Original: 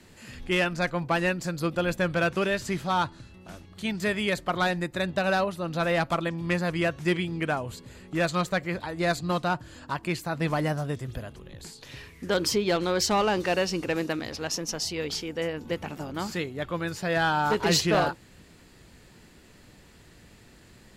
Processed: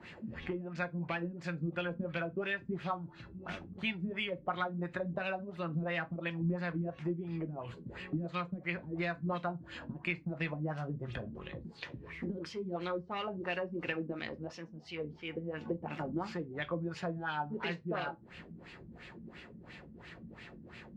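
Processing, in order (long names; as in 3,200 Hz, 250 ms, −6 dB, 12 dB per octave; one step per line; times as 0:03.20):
high-pass filter 59 Hz
high-shelf EQ 2,700 Hz +11 dB
downward compressor 12 to 1, threshold −35 dBFS, peak gain reduction 22.5 dB
auto-filter low-pass sine 2.9 Hz 210–2,700 Hz
convolution reverb RT60 0.20 s, pre-delay 6 ms, DRR 9 dB
level −1 dB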